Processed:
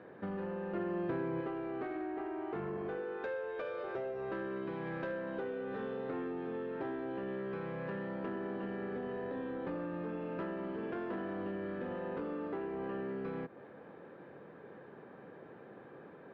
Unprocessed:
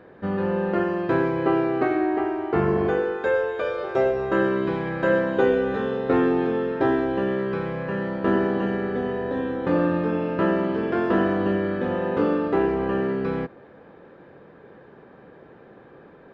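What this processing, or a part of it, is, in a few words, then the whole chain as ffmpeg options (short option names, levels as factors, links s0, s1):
AM radio: -filter_complex "[0:a]highpass=110,lowpass=3600,acompressor=threshold=0.0282:ratio=6,asoftclip=type=tanh:threshold=0.0473,asettb=1/sr,asplit=3[s0][s1][s2];[s0]atrim=end=0.744[s3];[s1]atrim=start=0.74:end=1.41,asetpts=PTS-STARTPTS,afade=t=in:d=0.004:c=qsin,afade=t=out:st=0.666:d=0.004:c=qsin,equalizer=f=150:w=0.37:g=5.5[s4];[s2]atrim=start=1.406[s5];[s3][s4]acrossfade=d=0.004:c1=hsin:c2=qsin[s6];[s6][s5]acrossfade=d=0.004:c1=qsin:c2=hsin,volume=0.596"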